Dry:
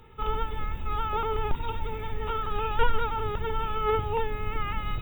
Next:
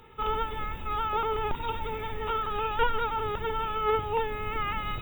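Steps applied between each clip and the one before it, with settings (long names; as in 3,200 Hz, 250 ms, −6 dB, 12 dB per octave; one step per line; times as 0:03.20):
low-shelf EQ 170 Hz −9 dB
in parallel at −3 dB: speech leveller within 3 dB 0.5 s
on the sum: level −3 dB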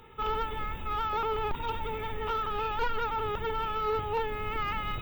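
soft clipping −23 dBFS, distortion −14 dB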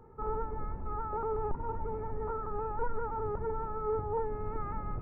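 Gaussian smoothing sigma 7.6 samples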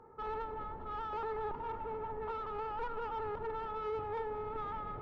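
mid-hump overdrive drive 17 dB, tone 1,900 Hz, clips at −23.5 dBFS
delay that swaps between a low-pass and a high-pass 101 ms, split 880 Hz, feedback 85%, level −13.5 dB
level −7.5 dB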